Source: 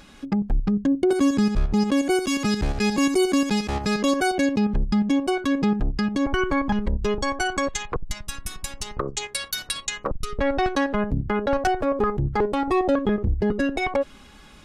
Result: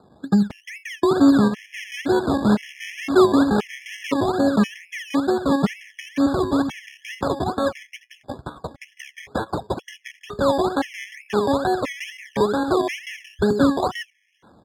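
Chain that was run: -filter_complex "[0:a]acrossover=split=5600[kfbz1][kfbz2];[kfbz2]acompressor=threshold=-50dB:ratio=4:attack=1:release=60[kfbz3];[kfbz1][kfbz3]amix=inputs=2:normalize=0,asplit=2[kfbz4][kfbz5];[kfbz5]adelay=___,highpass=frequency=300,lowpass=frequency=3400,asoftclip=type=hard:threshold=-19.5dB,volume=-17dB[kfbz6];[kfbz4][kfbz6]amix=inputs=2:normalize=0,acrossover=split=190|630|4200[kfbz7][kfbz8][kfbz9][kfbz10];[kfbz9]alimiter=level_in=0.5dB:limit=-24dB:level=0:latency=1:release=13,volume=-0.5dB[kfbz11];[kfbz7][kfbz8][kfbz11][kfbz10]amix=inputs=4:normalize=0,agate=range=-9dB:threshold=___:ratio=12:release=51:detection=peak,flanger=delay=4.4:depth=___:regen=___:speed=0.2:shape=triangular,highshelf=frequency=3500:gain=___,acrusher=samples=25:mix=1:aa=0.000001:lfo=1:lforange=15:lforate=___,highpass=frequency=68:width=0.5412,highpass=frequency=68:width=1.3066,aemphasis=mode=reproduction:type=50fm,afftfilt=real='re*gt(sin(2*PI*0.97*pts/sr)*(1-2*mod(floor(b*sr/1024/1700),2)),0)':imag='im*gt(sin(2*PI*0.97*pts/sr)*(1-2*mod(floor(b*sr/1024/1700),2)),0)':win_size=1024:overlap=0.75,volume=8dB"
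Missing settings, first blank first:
80, -35dB, 5, 65, 10.5, 2.2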